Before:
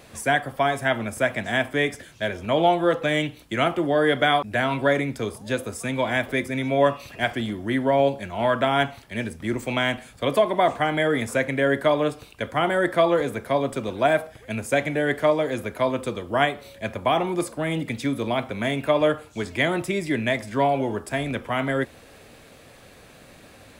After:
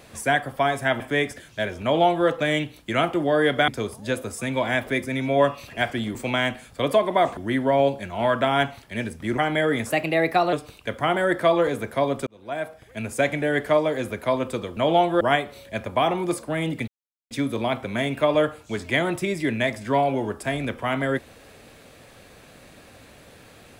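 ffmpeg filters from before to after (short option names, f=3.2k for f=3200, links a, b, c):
-filter_complex "[0:a]asplit=12[a][b][c][d][e][f][g][h][i][j][k][l];[a]atrim=end=1.002[m];[b]atrim=start=1.628:end=4.312[n];[c]atrim=start=5.098:end=7.572[o];[d]atrim=start=9.578:end=10.802[p];[e]atrim=start=7.568:end=9.582[q];[f]atrim=start=10.798:end=11.324[r];[g]atrim=start=11.32:end=12.06,asetpts=PTS-STARTPTS,asetrate=52038,aresample=44100[s];[h]atrim=start=12.056:end=13.8,asetpts=PTS-STARTPTS,afade=t=out:st=1.74:d=0.004:c=hsin[t];[i]atrim=start=13.8:end=16.302,asetpts=PTS-STARTPTS,afade=t=in:d=0.91[u];[j]atrim=start=2.458:end=2.902[v];[k]atrim=start=16.298:end=17.97,asetpts=PTS-STARTPTS,afade=t=out:st=1.668:d=0.004:c=hsin,apad=pad_dur=0.43[w];[l]atrim=start=17.97,asetpts=PTS-STARTPTS,afade=t=in:d=0.004:c=hsin[x];[m][n]acrossfade=d=0.004:c1=hsin:c2=hsin[y];[y][o]acrossfade=d=0.004:c1=hsin:c2=hsin[z];[z][p]acrossfade=d=0.004:c1=hsin:c2=hsin[aa];[aa][q]acrossfade=d=0.004:c1=hsin:c2=hsin[ab];[ab][r]acrossfade=d=0.004:c1=hsin:c2=hsin[ac];[ac][s]acrossfade=d=0.004:c1=hsin:c2=hsin[ad];[t][u]concat=n=2:v=0:a=1[ae];[ad][ae]acrossfade=d=0.004:c1=hsin:c2=hsin[af];[af][v]acrossfade=d=0.004:c1=hsin:c2=hsin[ag];[w][x]concat=n=2:v=0:a=1[ah];[ag][ah]acrossfade=d=0.004:c1=hsin:c2=hsin"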